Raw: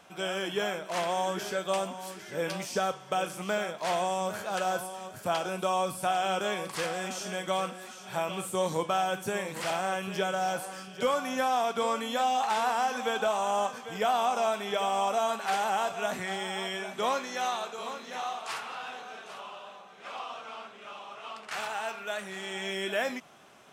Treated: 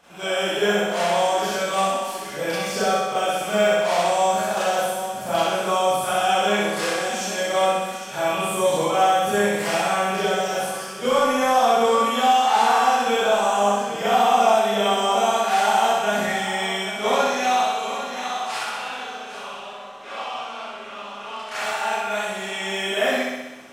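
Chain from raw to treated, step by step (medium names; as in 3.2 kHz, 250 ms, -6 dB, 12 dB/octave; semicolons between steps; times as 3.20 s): flutter echo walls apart 10.9 m, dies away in 1.1 s; Schroeder reverb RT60 0.46 s, combs from 27 ms, DRR -8.5 dB; trim -2 dB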